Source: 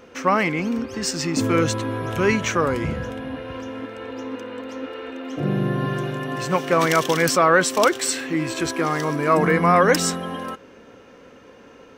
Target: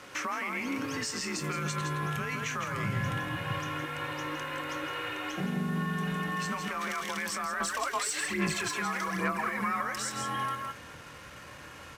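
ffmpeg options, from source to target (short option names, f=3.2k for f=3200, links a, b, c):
-filter_complex "[0:a]equalizer=f=250:t=o:w=1:g=-5,equalizer=f=500:t=o:w=1:g=-8,equalizer=f=1k:t=o:w=1:g=4,equalizer=f=2k:t=o:w=1:g=4,equalizer=f=8k:t=o:w=1:g=3,acompressor=threshold=-26dB:ratio=6,asplit=2[a][b];[b]adelay=25,volume=-12.5dB[c];[a][c]amix=inputs=2:normalize=0,asplit=2[d][e];[e]adelay=163.3,volume=-6dB,highshelf=f=4k:g=-3.67[f];[d][f]amix=inputs=2:normalize=0,alimiter=limit=-24dB:level=0:latency=1:release=114,afreqshift=41,asubboost=boost=4:cutoff=130,acrusher=bits=7:mix=0:aa=0.5,aresample=32000,aresample=44100,asettb=1/sr,asplit=3[g][h][i];[g]atrim=end=7.604[j];[h]atrim=start=7.6:end=9.82,asetpts=PTS-STARTPTS,afade=t=in:d=0.004:c=qsin,afade=t=out:st=2.216:d=0.004:c=qsin,aphaser=in_gain=1:out_gain=1:delay=4.9:decay=0.58:speed=1.2:type=sinusoidal[k];[i]atrim=start=9.816[l];[j][k]acrossfade=d=0.004:c1=hsin:c2=qsin[m];[m][l]acrossfade=d=0.004:c1=qsin:c2=hsin"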